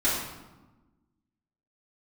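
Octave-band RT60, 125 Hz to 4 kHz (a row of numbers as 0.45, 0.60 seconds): 1.5, 1.7, 1.1, 1.1, 0.85, 0.70 seconds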